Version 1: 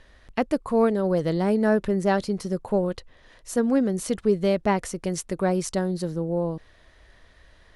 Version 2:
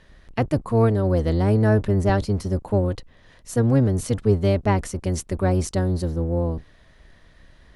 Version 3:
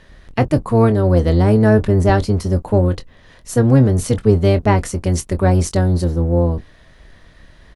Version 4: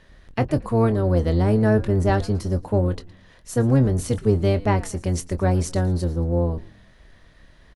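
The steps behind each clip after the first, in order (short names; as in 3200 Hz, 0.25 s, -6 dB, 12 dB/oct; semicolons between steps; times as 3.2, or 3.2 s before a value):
octaver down 1 oct, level +4 dB
doubler 23 ms -11.5 dB; gain +6 dB
frequency-shifting echo 0.113 s, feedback 41%, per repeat -94 Hz, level -20 dB; gain -6 dB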